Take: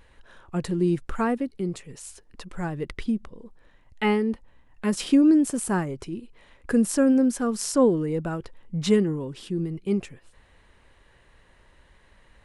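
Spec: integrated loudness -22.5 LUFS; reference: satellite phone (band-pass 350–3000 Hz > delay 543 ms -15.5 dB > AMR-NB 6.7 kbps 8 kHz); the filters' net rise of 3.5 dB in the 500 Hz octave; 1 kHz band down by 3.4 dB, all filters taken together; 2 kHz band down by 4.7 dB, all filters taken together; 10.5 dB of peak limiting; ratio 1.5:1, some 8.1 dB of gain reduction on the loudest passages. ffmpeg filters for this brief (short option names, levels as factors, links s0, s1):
-af "equalizer=f=500:t=o:g=7,equalizer=f=1000:t=o:g=-6,equalizer=f=2000:t=o:g=-3.5,acompressor=threshold=0.0178:ratio=1.5,alimiter=level_in=1.12:limit=0.0631:level=0:latency=1,volume=0.891,highpass=350,lowpass=3000,aecho=1:1:543:0.168,volume=7.08" -ar 8000 -c:a libopencore_amrnb -b:a 6700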